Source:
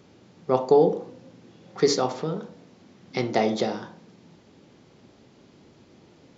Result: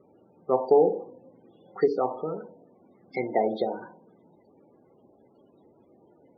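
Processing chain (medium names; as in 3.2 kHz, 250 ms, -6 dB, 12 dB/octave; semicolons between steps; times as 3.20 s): loudest bins only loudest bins 32; low-pass that closes with the level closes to 1 kHz, closed at -17.5 dBFS; tone controls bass -12 dB, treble +4 dB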